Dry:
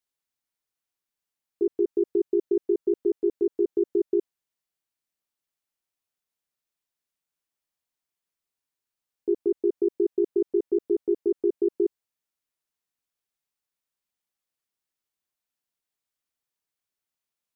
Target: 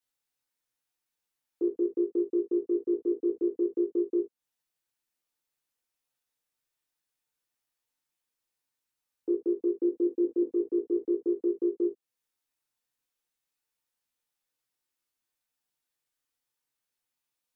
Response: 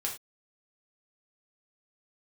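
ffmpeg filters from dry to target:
-filter_complex "[0:a]asettb=1/sr,asplit=3[s0][s1][s2];[s0]atrim=end=9.804[s3];[s1]atrim=start=9.8:end=10.43,asetpts=PTS-STARTPTS,afade=t=in:d=0.004:c=qsin,afade=t=out:st=0.626:d=0.004:c=qsin,aecho=1:1:3.7:0.48,atrim=end_sample=27783[s4];[s2]atrim=start=10.426[s5];[s3][s4]acrossfade=d=0.004:c1=hsin:c2=qsin[s6];[s6][s5]acrossfade=d=0.004:c1=qsin:c2=hsin,acrossover=split=200|490[s7][s8][s9];[s7]acompressor=threshold=0.00112:ratio=4[s10];[s8]acompressor=threshold=0.0447:ratio=4[s11];[s9]acompressor=threshold=0.00447:ratio=4[s12];[s10][s11][s12]amix=inputs=3:normalize=0[s13];[1:a]atrim=start_sample=2205,atrim=end_sample=3969,asetrate=48510,aresample=44100[s14];[s13][s14]afir=irnorm=-1:irlink=0"

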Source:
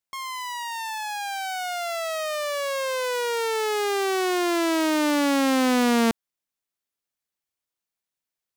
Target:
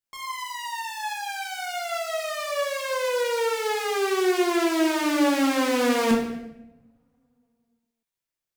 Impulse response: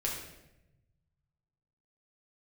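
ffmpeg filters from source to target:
-filter_complex "[1:a]atrim=start_sample=2205[s0];[0:a][s0]afir=irnorm=-1:irlink=0,volume=0.596"

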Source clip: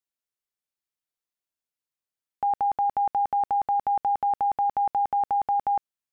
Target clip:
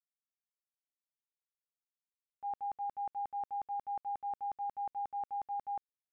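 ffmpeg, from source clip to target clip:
-af "agate=range=0.0224:threshold=0.282:ratio=3:detection=peak,volume=2"

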